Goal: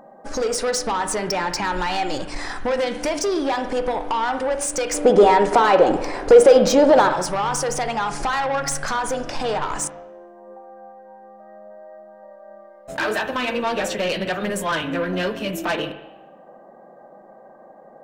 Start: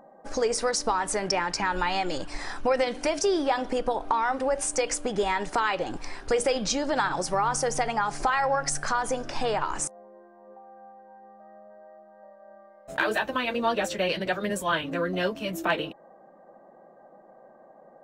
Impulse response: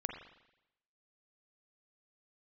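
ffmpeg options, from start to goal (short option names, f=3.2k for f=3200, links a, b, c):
-filter_complex "[0:a]asoftclip=type=tanh:threshold=-24dB,asettb=1/sr,asplit=3[a][b][c];[a]atrim=end=4.944[d];[b]atrim=start=4.94:end=7.09,asetpts=PTS-STARTPTS,afade=t=in:d=0.004:c=qsin,afade=t=out:st=2.146:d=0.004:c=qsin,equalizer=f=510:w=0.59:g=13[e];[c]atrim=start=7.086[f];[d][e]acrossfade=d=0.004:c1=hsin:c2=qsin[g];[g][f]acrossfade=d=0.004:c1=qsin:c2=hsin,asplit=2[h][i];[1:a]atrim=start_sample=2205[j];[i][j]afir=irnorm=-1:irlink=0,volume=1.5dB[k];[h][k]amix=inputs=2:normalize=0"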